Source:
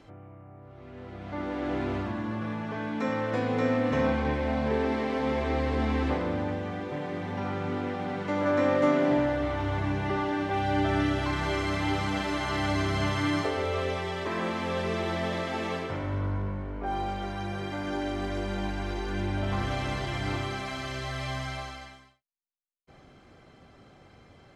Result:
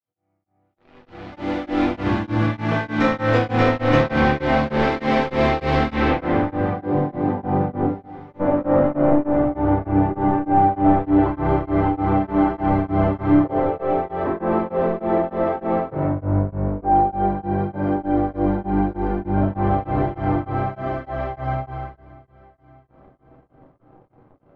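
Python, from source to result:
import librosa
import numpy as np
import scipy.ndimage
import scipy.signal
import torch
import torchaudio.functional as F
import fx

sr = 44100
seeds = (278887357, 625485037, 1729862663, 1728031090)

p1 = fx.fade_in_head(x, sr, length_s=2.31)
p2 = scipy.signal.sosfilt(scipy.signal.butter(2, 96.0, 'highpass', fs=sr, output='sos'), p1)
p3 = fx.high_shelf(p2, sr, hz=8200.0, db=5.5)
p4 = fx.leveller(p3, sr, passes=3)
p5 = fx.filter_sweep_lowpass(p4, sr, from_hz=4400.0, to_hz=830.0, start_s=5.85, end_s=6.96, q=0.95)
p6 = fx.pre_emphasis(p5, sr, coefficient=0.9, at=(7.85, 8.39), fade=0.02)
p7 = p6 + fx.echo_feedback(p6, sr, ms=581, feedback_pct=57, wet_db=-23.0, dry=0)
p8 = fx.room_shoebox(p7, sr, seeds[0], volume_m3=58.0, walls='mixed', distance_m=0.71)
y = p8 * np.abs(np.cos(np.pi * 3.3 * np.arange(len(p8)) / sr))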